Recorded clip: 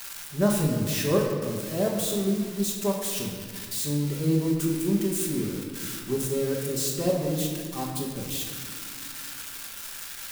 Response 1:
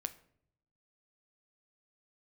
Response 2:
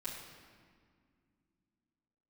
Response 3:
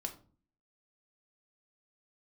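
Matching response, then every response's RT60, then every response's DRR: 2; 0.65, 2.0, 0.40 s; 9.5, -10.5, 3.0 dB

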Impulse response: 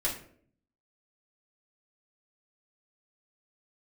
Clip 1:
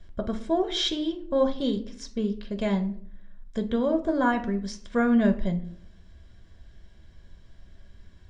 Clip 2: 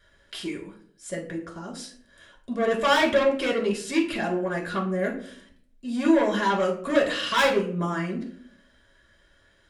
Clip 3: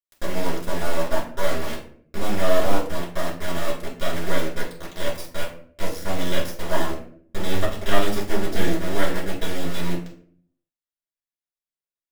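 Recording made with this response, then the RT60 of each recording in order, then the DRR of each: 3; 0.60, 0.60, 0.60 s; 6.0, -1.5, -6.0 dB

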